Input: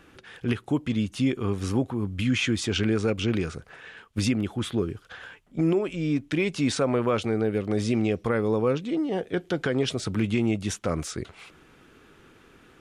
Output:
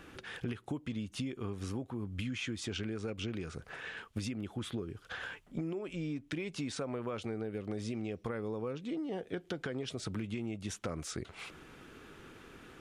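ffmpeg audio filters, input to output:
ffmpeg -i in.wav -af "acompressor=threshold=-36dB:ratio=10,volume=1dB" out.wav

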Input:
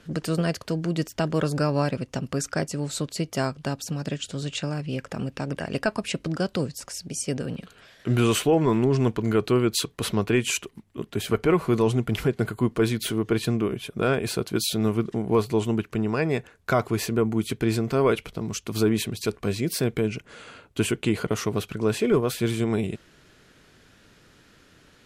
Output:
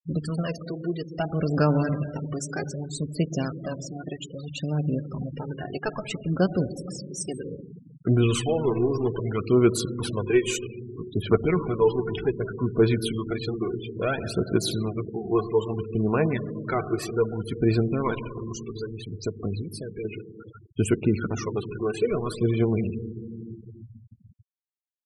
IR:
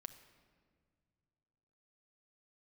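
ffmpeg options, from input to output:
-filter_complex "[0:a]asettb=1/sr,asplit=3[link_01][link_02][link_03];[link_01]atrim=end=18.374[link_04];[link_02]atrim=start=18.37:end=20.05,asetpts=PTS-STARTPTS,afade=type=in:duration=0.004:curve=qsin,afade=type=out:start_time=1.676:duration=0.004:curve=qsin,acompressor=threshold=-29dB:ratio=3[link_05];[link_03]atrim=start=20.046[link_06];[link_04][link_05]acrossfade=duration=0.004:curve1=hsin:curve2=qsin[link_07];[link_07][link_06]acrossfade=duration=0.004:curve1=qsin:curve2=hsin,asettb=1/sr,asplit=3[link_08][link_09][link_10];[link_08]atrim=end=20.984[link_11];[link_09]atrim=start=20.98:end=21.57,asetpts=PTS-STARTPTS,afade=type=in:duration=0.004:curve=qsin,afade=type=out:start_time=0.586:duration=0.004:curve=qsin,bandreject=frequency=3000:width=12[link_12];[link_10]atrim=start=21.566[link_13];[link_11][link_12]acrossfade=duration=0.004:curve1=hsin:curve2=qsin[link_14];[link_14][link_13]acrossfade=duration=0.004:curve1=qsin:curve2=hsin,aphaser=in_gain=1:out_gain=1:delay=2.8:decay=0.61:speed=0.62:type=sinusoidal[link_15];[1:a]atrim=start_sample=2205,asetrate=23814,aresample=44100[link_16];[link_15][link_16]afir=irnorm=-1:irlink=0,afftfilt=real='re*gte(hypot(re,im),0.0355)':imag='im*gte(hypot(re,im),0.0355)':win_size=1024:overlap=0.75,volume=-2.5dB"

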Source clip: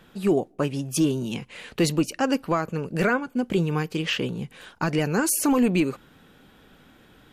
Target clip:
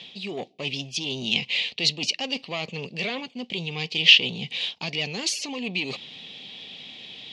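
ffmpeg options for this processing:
ffmpeg -i in.wav -af "tiltshelf=frequency=1300:gain=4,areverse,acompressor=threshold=-27dB:ratio=12,areverse,asoftclip=type=tanh:threshold=-23.5dB,aexciter=amount=10.8:drive=9.4:freq=2300,highpass=150,equalizer=frequency=310:width_type=q:width=4:gain=-7,equalizer=frequency=720:width_type=q:width=4:gain=4,equalizer=frequency=1500:width_type=q:width=4:gain=-9,lowpass=frequency=4100:width=0.5412,lowpass=frequency=4100:width=1.3066" out.wav

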